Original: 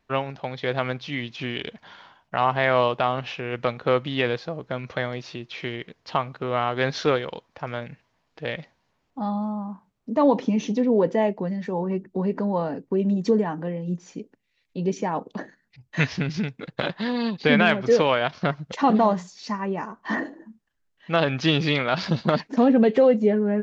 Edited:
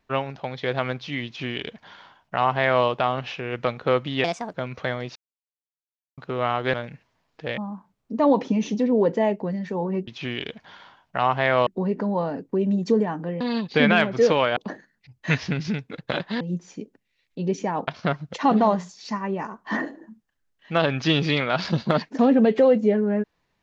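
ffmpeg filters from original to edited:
ffmpeg -i in.wav -filter_complex "[0:a]asplit=13[link_01][link_02][link_03][link_04][link_05][link_06][link_07][link_08][link_09][link_10][link_11][link_12][link_13];[link_01]atrim=end=4.244[link_14];[link_02]atrim=start=4.24:end=4.66,asetpts=PTS-STARTPTS,asetrate=62622,aresample=44100[link_15];[link_03]atrim=start=4.656:end=5.28,asetpts=PTS-STARTPTS,afade=type=out:start_time=0.62:duration=0.004:curve=hsin[link_16];[link_04]atrim=start=5.28:end=6.3,asetpts=PTS-STARTPTS,volume=0[link_17];[link_05]atrim=start=6.3:end=6.862,asetpts=PTS-STARTPTS,afade=type=in:duration=0.004:curve=hsin[link_18];[link_06]atrim=start=7.718:end=8.562[link_19];[link_07]atrim=start=9.548:end=12.052[link_20];[link_08]atrim=start=1.258:end=2.852[link_21];[link_09]atrim=start=12.048:end=13.792[link_22];[link_10]atrim=start=17.098:end=18.262[link_23];[link_11]atrim=start=15.258:end=17.102[link_24];[link_12]atrim=start=13.788:end=15.262[link_25];[link_13]atrim=start=18.258[link_26];[link_14][link_15]acrossfade=duration=0.004:curve1=hsin:curve2=hsin[link_27];[link_16][link_17][link_18]concat=n=3:v=0:a=1[link_28];[link_27][link_28]acrossfade=duration=0.004:curve1=hsin:curve2=hsin[link_29];[link_29][link_19]acrossfade=duration=0.004:curve1=hsin:curve2=hsin[link_30];[link_30][link_20]acrossfade=duration=0.004:curve1=hsin:curve2=hsin[link_31];[link_31][link_21]acrossfade=duration=0.004:curve1=hsin:curve2=hsin[link_32];[link_32][link_22]acrossfade=duration=0.004:curve1=hsin:curve2=hsin[link_33];[link_33][link_23]acrossfade=duration=0.004:curve1=hsin:curve2=hsin[link_34];[link_34][link_24]acrossfade=duration=0.004:curve1=hsin:curve2=hsin[link_35];[link_35][link_25]acrossfade=duration=0.004:curve1=hsin:curve2=hsin[link_36];[link_36][link_26]acrossfade=duration=0.004:curve1=hsin:curve2=hsin" out.wav

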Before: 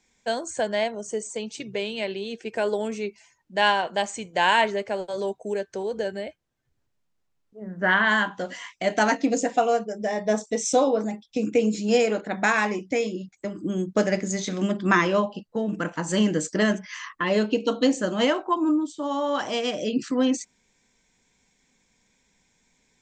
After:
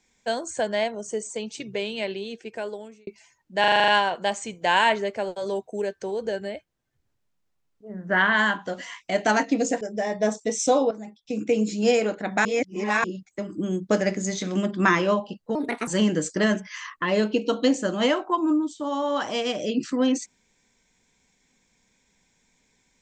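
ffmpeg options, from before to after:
ffmpeg -i in.wav -filter_complex "[0:a]asplit=15[link_01][link_02][link_03][link_04][link_05][link_06][link_07][link_08][link_09][link_10][link_11][link_12][link_13][link_14][link_15];[link_01]atrim=end=3.07,asetpts=PTS-STARTPTS,afade=type=out:start_time=2.11:duration=0.96[link_16];[link_02]atrim=start=3.07:end=3.642,asetpts=PTS-STARTPTS,afade=type=in:duration=0.004:curve=hsin[link_17];[link_03]atrim=start=3.598:end=3.642[link_18];[link_04]atrim=start=3.598:end=3.642[link_19];[link_05]atrim=start=3.598:end=3.642[link_20];[link_06]atrim=start=3.598:end=3.642[link_21];[link_07]atrim=start=3.598:end=3.642[link_22];[link_08]atrim=start=3.598:end=3.642[link_23];[link_09]atrim=start=3.598:end=9.532[link_24];[link_10]atrim=start=9.868:end=10.97,asetpts=PTS-STARTPTS,afade=type=out:start_time=1.098:duration=0.004:curve=hsin:silence=0.237137[link_25];[link_11]atrim=start=10.97:end=12.512,asetpts=PTS-STARTPTS,afade=type=in:duration=0.74:silence=0.237137[link_26];[link_12]atrim=start=12.508:end=13.102,asetpts=PTS-STARTPTS,areverse[link_27];[link_13]atrim=start=13.098:end=15.614[link_28];[link_14]atrim=start=15.61:end=16.06,asetpts=PTS-STARTPTS,asetrate=61299,aresample=44100[link_29];[link_15]atrim=start=16.056[link_30];[link_16][link_17]concat=n=2:v=0:a=1[link_31];[link_31][link_18]acrossfade=duration=0.004:curve1=hsin:curve2=hsin[link_32];[link_32][link_19]acrossfade=duration=0.004:curve1=hsin:curve2=hsin[link_33];[link_33][link_20]acrossfade=duration=0.004:curve1=hsin:curve2=hsin[link_34];[link_34][link_21]acrossfade=duration=0.004:curve1=hsin:curve2=hsin[link_35];[link_35][link_22]acrossfade=duration=0.004:curve1=hsin:curve2=hsin[link_36];[link_36][link_23]acrossfade=duration=0.004:curve1=hsin:curve2=hsin[link_37];[link_37][link_24]acrossfade=duration=0.004:curve1=hsin:curve2=hsin[link_38];[link_25][link_26]concat=n=2:v=0:a=1[link_39];[link_38][link_39]acrossfade=duration=0.004:curve1=hsin:curve2=hsin[link_40];[link_40][link_27]acrossfade=duration=0.004:curve1=hsin:curve2=hsin[link_41];[link_41][link_28]acrossfade=duration=0.004:curve1=hsin:curve2=hsin[link_42];[link_42][link_29]acrossfade=duration=0.004:curve1=hsin:curve2=hsin[link_43];[link_43][link_30]acrossfade=duration=0.004:curve1=hsin:curve2=hsin" out.wav

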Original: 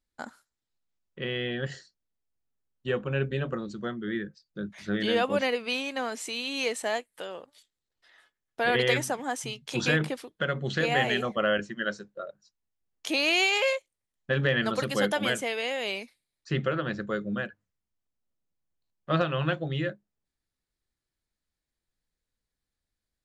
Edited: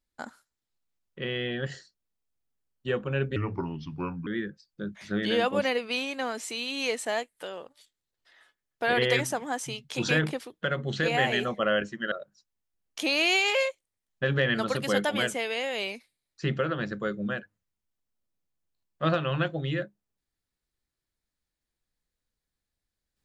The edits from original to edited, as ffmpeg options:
ffmpeg -i in.wav -filter_complex "[0:a]asplit=4[link_01][link_02][link_03][link_04];[link_01]atrim=end=3.364[link_05];[link_02]atrim=start=3.36:end=4.04,asetpts=PTS-STARTPTS,asetrate=33075,aresample=44100[link_06];[link_03]atrim=start=4.036:end=11.892[link_07];[link_04]atrim=start=12.188[link_08];[link_05][link_06]acrossfade=duration=0.004:curve1=hsin:curve2=hsin[link_09];[link_09][link_07]acrossfade=duration=0.004:curve1=hsin:curve2=hsin[link_10];[link_10][link_08]acrossfade=duration=0.004:curve1=hsin:curve2=hsin" out.wav

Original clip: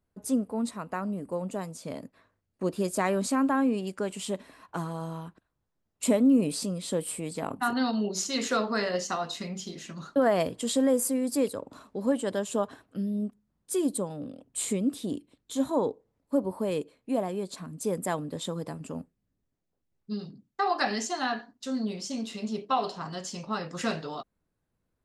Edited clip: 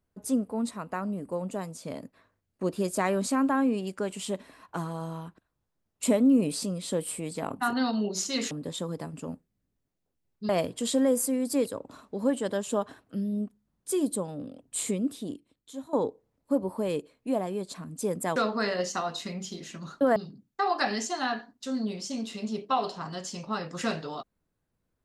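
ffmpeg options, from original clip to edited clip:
ffmpeg -i in.wav -filter_complex "[0:a]asplit=6[link_01][link_02][link_03][link_04][link_05][link_06];[link_01]atrim=end=8.512[link_07];[link_02]atrim=start=18.178:end=20.162[link_08];[link_03]atrim=start=10.308:end=15.75,asetpts=PTS-STARTPTS,afade=type=out:start_time=4.352:duration=1.09:silence=0.158489[link_09];[link_04]atrim=start=15.75:end=18.182,asetpts=PTS-STARTPTS,afade=type=in:duration=0.004:curve=hsin:silence=0.158489[link_10];[link_05]atrim=start=8.508:end=10.312[link_11];[link_06]atrim=start=20.158[link_12];[link_07][link_08]acrossfade=duration=0.004:curve1=hsin:curve2=hsin[link_13];[link_09][link_10]concat=n=2:v=0:a=1[link_14];[link_13][link_14]acrossfade=duration=0.004:curve1=hsin:curve2=hsin[link_15];[link_15][link_11]acrossfade=duration=0.004:curve1=hsin:curve2=hsin[link_16];[link_16][link_12]acrossfade=duration=0.004:curve1=hsin:curve2=hsin" out.wav

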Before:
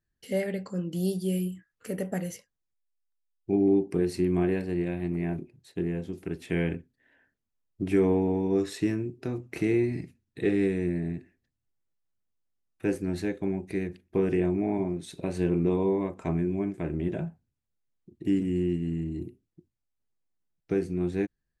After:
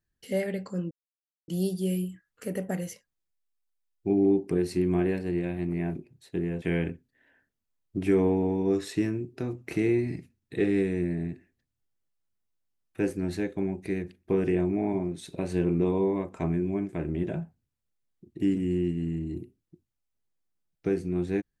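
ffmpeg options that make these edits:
ffmpeg -i in.wav -filter_complex "[0:a]asplit=3[link_01][link_02][link_03];[link_01]atrim=end=0.91,asetpts=PTS-STARTPTS,afade=type=out:start_time=0.906:duration=0.004:curve=hsin,apad=pad_dur=0.57[link_04];[link_02]atrim=start=0.91:end=6.052,asetpts=PTS-STARTPTS,afade=type=in:duration=0.004:curve=hsin[link_05];[link_03]atrim=start=6.468[link_06];[link_04][link_05]concat=n=2:v=0:a=1[link_07];[link_07][link_06]acrossfade=duration=0.004:curve1=hsin:curve2=hsin" out.wav

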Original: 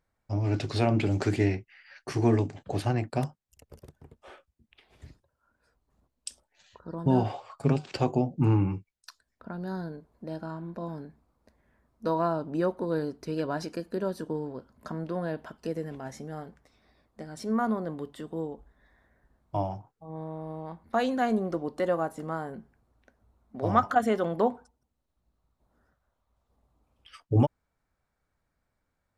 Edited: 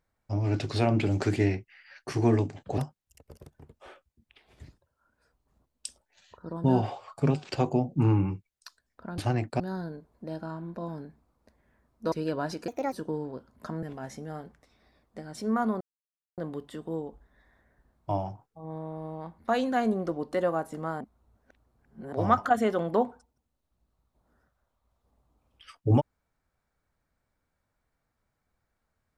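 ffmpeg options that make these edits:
ffmpeg -i in.wav -filter_complex "[0:a]asplit=11[link_01][link_02][link_03][link_04][link_05][link_06][link_07][link_08][link_09][link_10][link_11];[link_01]atrim=end=2.782[link_12];[link_02]atrim=start=3.198:end=9.602[link_13];[link_03]atrim=start=2.778:end=3.202[link_14];[link_04]atrim=start=9.598:end=12.122[link_15];[link_05]atrim=start=13.228:end=13.794[link_16];[link_06]atrim=start=13.79:end=14.14,asetpts=PTS-STARTPTS,asetrate=62622,aresample=44100[link_17];[link_07]atrim=start=14.136:end=15.042[link_18];[link_08]atrim=start=15.848:end=17.83,asetpts=PTS-STARTPTS,afade=type=out:start_time=1.978:duration=0.004:curve=hsin,apad=pad_dur=0.57[link_19];[link_09]atrim=start=17.83:end=22.462,asetpts=PTS-STARTPTS,afade=type=in:duration=0.004:curve=hsin[link_20];[link_10]atrim=start=22.458:end=23.582,asetpts=PTS-STARTPTS,areverse[link_21];[link_11]atrim=start=23.578[link_22];[link_12][link_13]acrossfade=duration=0.004:curve1=hsin:curve2=hsin[link_23];[link_23][link_14]acrossfade=duration=0.004:curve1=hsin:curve2=hsin[link_24];[link_24][link_15]acrossfade=duration=0.004:curve1=hsin:curve2=hsin[link_25];[link_25][link_16]acrossfade=duration=0.004:curve1=hsin:curve2=hsin[link_26];[link_26][link_17]acrossfade=duration=0.004:curve1=hsin:curve2=hsin[link_27];[link_27][link_18]acrossfade=duration=0.004:curve1=hsin:curve2=hsin[link_28];[link_19][link_20]concat=n=2:v=0:a=1[link_29];[link_28][link_29]acrossfade=duration=0.004:curve1=hsin:curve2=hsin[link_30];[link_30][link_21]acrossfade=duration=0.004:curve1=hsin:curve2=hsin[link_31];[link_31][link_22]acrossfade=duration=0.004:curve1=hsin:curve2=hsin" out.wav

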